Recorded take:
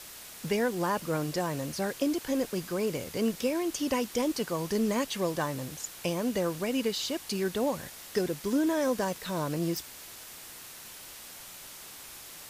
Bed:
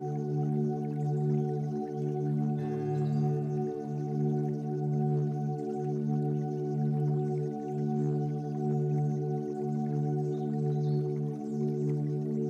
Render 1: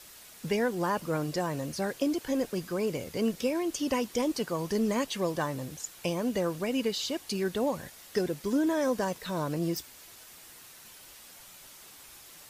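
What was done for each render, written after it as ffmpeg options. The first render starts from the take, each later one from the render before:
-af "afftdn=nr=6:nf=-47"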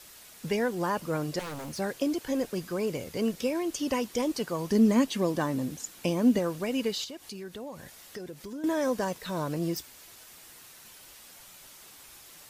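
-filter_complex "[0:a]asettb=1/sr,asplit=3[a][b][c];[a]atrim=end=1.394[d];[b]atrim=start=1.39:end=1.79,asetpts=PTS-STARTPTS,afade=t=in:d=0.004:c=qsin,afade=t=out:st=0.396:d=0.004:c=qsin,aeval=exprs='0.0224*(abs(mod(val(0)/0.0224+3,4)-2)-1)':c=same[e];[c]atrim=start=1.786[f];[d][e]acrossfade=d=0.004:c1=hsin:c2=qsin[g];[g][f]acrossfade=d=0.004:c1=qsin:c2=hsin,asettb=1/sr,asplit=3[h][i][j];[h]atrim=end=4.714[k];[i]atrim=start=4.71:end=6.39,asetpts=PTS-STARTPTS,afade=t=in:d=0.004:c=qsin,afade=t=out:st=1.676:d=0.004:c=qsin,equalizer=f=250:t=o:w=0.77:g=10[l];[j]atrim=start=6.386[m];[k][l]acrossfade=d=0.004:c1=hsin:c2=qsin[n];[n][m]acrossfade=d=0.004:c1=qsin:c2=hsin,asettb=1/sr,asplit=3[o][p][q];[o]atrim=end=7.044[r];[p]atrim=start=7.04:end=8.64,asetpts=PTS-STARTPTS,afade=t=in:d=0.004:c=qsin,afade=t=out:st=1.596:d=0.004:c=qsin,acompressor=threshold=-42dB:ratio=2.5:attack=3.2:release=140:knee=1:detection=peak[s];[q]atrim=start=8.636[t];[r][s]acrossfade=d=0.004:c1=hsin:c2=qsin[u];[u][t]acrossfade=d=0.004:c1=qsin:c2=hsin"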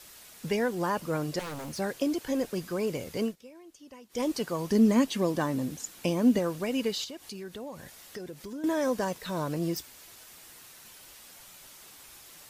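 -filter_complex "[0:a]asplit=3[a][b][c];[a]atrim=end=3.36,asetpts=PTS-STARTPTS,afade=t=out:st=3.22:d=0.14:silence=0.0944061[d];[b]atrim=start=3.36:end=4.09,asetpts=PTS-STARTPTS,volume=-20.5dB[e];[c]atrim=start=4.09,asetpts=PTS-STARTPTS,afade=t=in:d=0.14:silence=0.0944061[f];[d][e][f]concat=n=3:v=0:a=1"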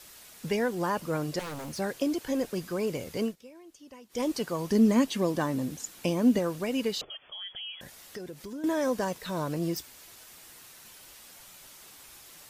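-filter_complex "[0:a]asettb=1/sr,asplit=3[a][b][c];[a]atrim=end=7.014[d];[b]atrim=start=7.01:end=7.81,asetpts=PTS-STARTPTS,afade=t=in:d=0.004:c=qsin,afade=t=out:st=0.796:d=0.004:c=qsin,lowpass=f=3k:t=q:w=0.5098,lowpass=f=3k:t=q:w=0.6013,lowpass=f=3k:t=q:w=0.9,lowpass=f=3k:t=q:w=2.563,afreqshift=-3500[e];[c]atrim=start=7.806[f];[d][e]acrossfade=d=0.004:c1=hsin:c2=qsin[g];[g][f]acrossfade=d=0.004:c1=qsin:c2=hsin"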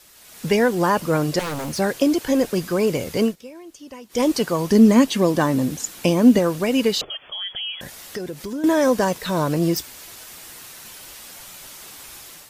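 -af "dynaudnorm=f=130:g=5:m=10.5dB"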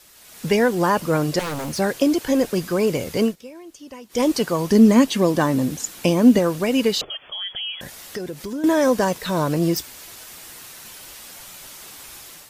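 -af anull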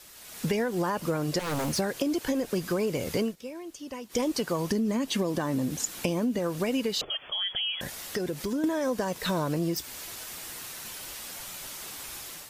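-af "alimiter=limit=-10.5dB:level=0:latency=1:release=128,acompressor=threshold=-25dB:ratio=6"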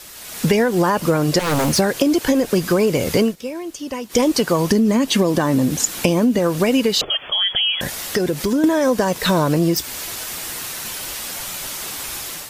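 -af "volume=11.5dB"

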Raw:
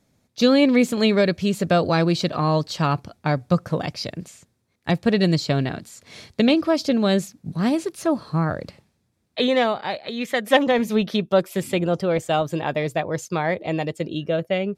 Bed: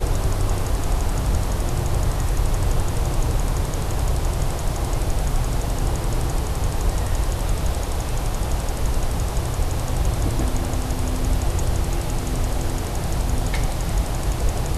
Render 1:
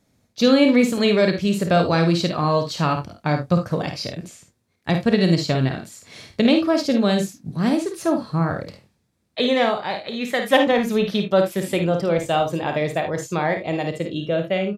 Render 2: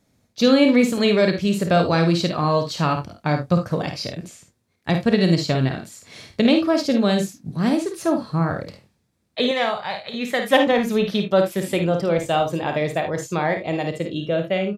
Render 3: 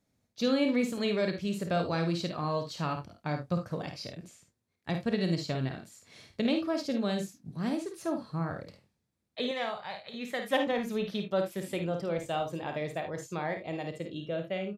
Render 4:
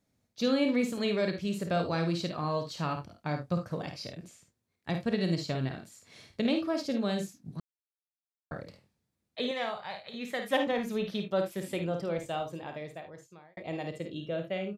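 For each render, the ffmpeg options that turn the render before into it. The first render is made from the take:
-filter_complex "[0:a]asplit=2[a][b];[b]adelay=30,volume=-13dB[c];[a][c]amix=inputs=2:normalize=0,aecho=1:1:53|74:0.447|0.224"
-filter_complex "[0:a]asettb=1/sr,asplit=3[a][b][c];[a]atrim=end=9.514[d];[b]atrim=start=9.51:end=10.14,asetpts=PTS-STARTPTS,afade=t=in:d=0.004:c=qsin,afade=t=out:st=0.626:d=0.004:c=qsin,equalizer=f=310:w=1.5:g=-14[e];[c]atrim=start=10.136[f];[d][e]acrossfade=d=0.004:c1=hsin:c2=qsin[g];[g][f]acrossfade=d=0.004:c1=qsin:c2=hsin"
-af "volume=-12dB"
-filter_complex "[0:a]asplit=4[a][b][c][d];[a]atrim=end=7.6,asetpts=PTS-STARTPTS,afade=t=out:st=7.596:d=0.004:c=hsin[e];[b]atrim=start=7.6:end=8.51,asetpts=PTS-STARTPTS,volume=0[f];[c]atrim=start=8.51:end=13.57,asetpts=PTS-STARTPTS,afade=t=in:d=0.004:c=hsin,afade=t=out:st=3.52:d=1.54[g];[d]atrim=start=13.57,asetpts=PTS-STARTPTS,afade=t=in:d=0.004:c=hsin[h];[e][f][g][h]concat=n=4:v=0:a=1"

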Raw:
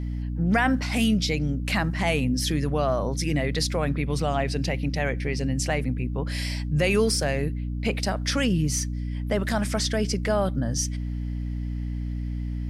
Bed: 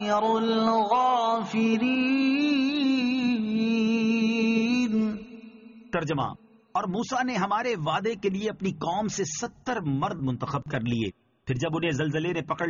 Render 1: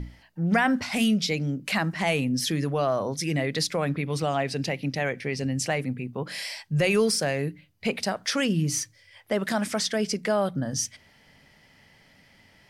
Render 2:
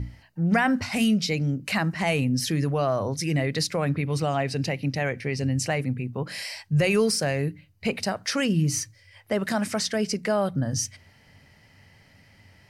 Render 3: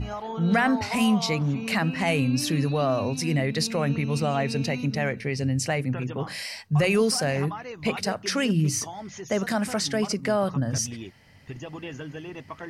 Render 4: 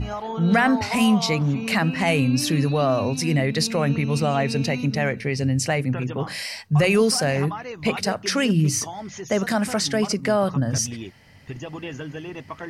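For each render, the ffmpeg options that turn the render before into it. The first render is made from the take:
-af "bandreject=f=60:t=h:w=6,bandreject=f=120:t=h:w=6,bandreject=f=180:t=h:w=6,bandreject=f=240:t=h:w=6,bandreject=f=300:t=h:w=6"
-af "equalizer=f=96:t=o:w=0.73:g=12,bandreject=f=3.4k:w=9.7"
-filter_complex "[1:a]volume=-10.5dB[a];[0:a][a]amix=inputs=2:normalize=0"
-af "volume=3.5dB"

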